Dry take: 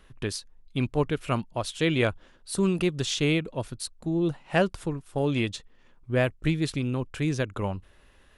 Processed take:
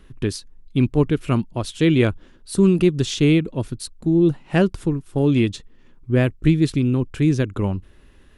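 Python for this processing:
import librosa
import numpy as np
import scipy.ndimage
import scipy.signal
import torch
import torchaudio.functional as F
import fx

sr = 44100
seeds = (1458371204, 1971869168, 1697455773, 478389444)

y = fx.low_shelf_res(x, sr, hz=450.0, db=6.5, q=1.5)
y = F.gain(torch.from_numpy(y), 2.0).numpy()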